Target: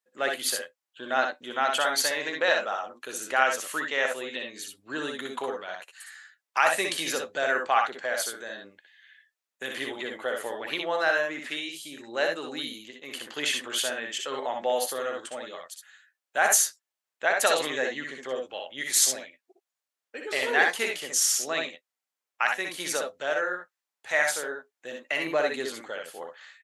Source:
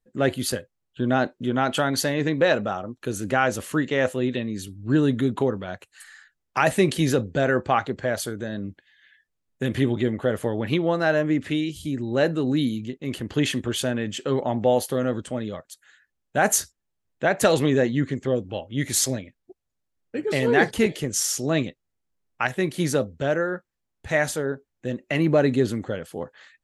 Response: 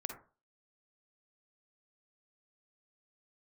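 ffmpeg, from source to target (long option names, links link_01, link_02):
-af "highpass=810,aecho=1:1:61|73:0.596|0.355"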